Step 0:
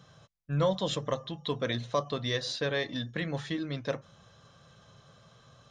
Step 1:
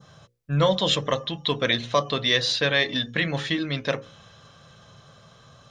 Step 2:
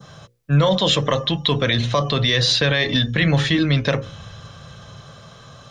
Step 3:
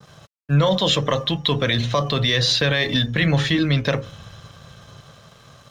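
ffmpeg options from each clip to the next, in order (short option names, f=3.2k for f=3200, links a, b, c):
-af "bandreject=f=60:t=h:w=6,bandreject=f=120:t=h:w=6,bandreject=f=180:t=h:w=6,bandreject=f=240:t=h:w=6,bandreject=f=300:t=h:w=6,bandreject=f=360:t=h:w=6,bandreject=f=420:t=h:w=6,bandreject=f=480:t=h:w=6,bandreject=f=540:t=h:w=6,adynamicequalizer=threshold=0.00316:dfrequency=2700:dqfactor=0.9:tfrequency=2700:tqfactor=0.9:attack=5:release=100:ratio=0.375:range=4:mode=boostabove:tftype=bell,volume=6.5dB"
-filter_complex "[0:a]acrossover=split=120|1100[a][b][c];[a]dynaudnorm=f=250:g=11:m=13dB[d];[d][b][c]amix=inputs=3:normalize=0,alimiter=level_in=15.5dB:limit=-1dB:release=50:level=0:latency=1,volume=-7dB"
-af "aeval=exprs='sgn(val(0))*max(abs(val(0))-0.00355,0)':c=same,volume=-1dB"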